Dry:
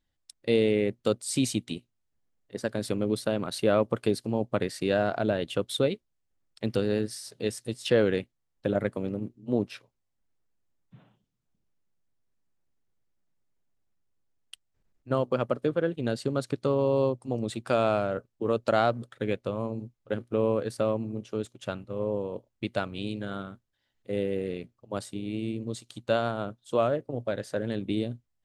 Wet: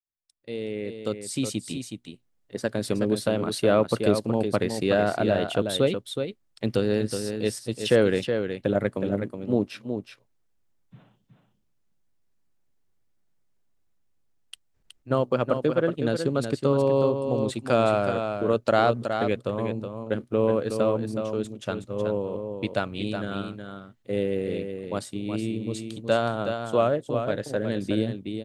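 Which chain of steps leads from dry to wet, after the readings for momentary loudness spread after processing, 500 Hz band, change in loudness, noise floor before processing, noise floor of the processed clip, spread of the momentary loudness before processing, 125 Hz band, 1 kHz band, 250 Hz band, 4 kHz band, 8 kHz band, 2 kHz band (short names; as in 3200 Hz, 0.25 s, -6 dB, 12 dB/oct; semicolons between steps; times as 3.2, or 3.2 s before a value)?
11 LU, +3.5 dB, +3.0 dB, -78 dBFS, -69 dBFS, 11 LU, +3.5 dB, +4.0 dB, +3.0 dB, +3.0 dB, +1.5 dB, +3.5 dB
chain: opening faded in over 2.47 s; echo 0.37 s -7 dB; gain +3 dB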